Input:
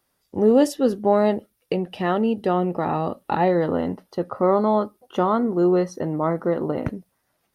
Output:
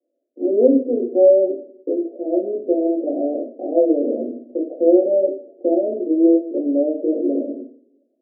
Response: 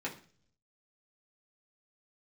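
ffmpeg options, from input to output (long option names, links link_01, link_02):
-filter_complex "[1:a]atrim=start_sample=2205,asetrate=33075,aresample=44100[link_01];[0:a][link_01]afir=irnorm=-1:irlink=0,asetrate=40517,aresample=44100,asuperpass=centerf=410:order=20:qfactor=0.96,volume=-1dB"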